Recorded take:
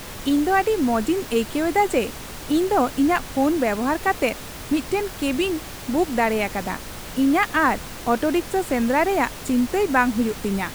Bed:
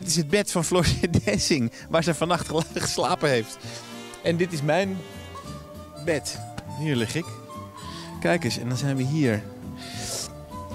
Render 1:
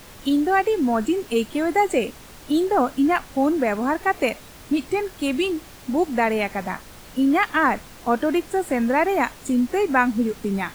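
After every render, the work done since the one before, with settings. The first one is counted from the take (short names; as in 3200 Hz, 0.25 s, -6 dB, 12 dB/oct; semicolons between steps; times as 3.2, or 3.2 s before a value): noise print and reduce 8 dB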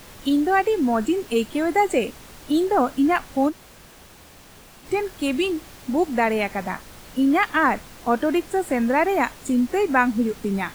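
3.5–4.84 room tone, crossfade 0.06 s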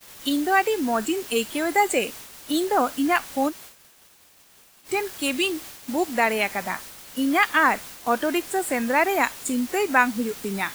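expander -38 dBFS; tilt +2.5 dB/oct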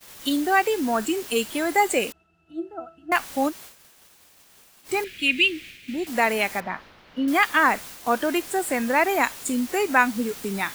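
2.12–3.12 octave resonator E, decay 0.19 s; 5.04–6.07 EQ curve 210 Hz 0 dB, 370 Hz -4 dB, 950 Hz -23 dB, 2400 Hz +10 dB, 5200 Hz -8 dB, 11000 Hz -13 dB; 6.6–7.28 air absorption 310 m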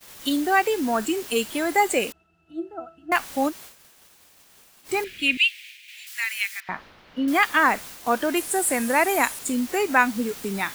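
5.37–6.69 inverse Chebyshev high-pass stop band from 310 Hz, stop band 80 dB; 8.37–9.39 bell 9900 Hz +11 dB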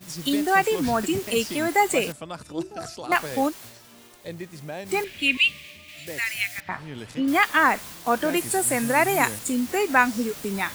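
add bed -13 dB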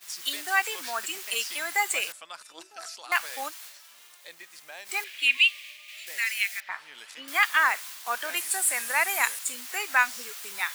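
HPF 1300 Hz 12 dB/oct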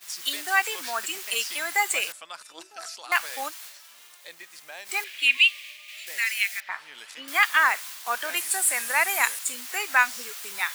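gain +2 dB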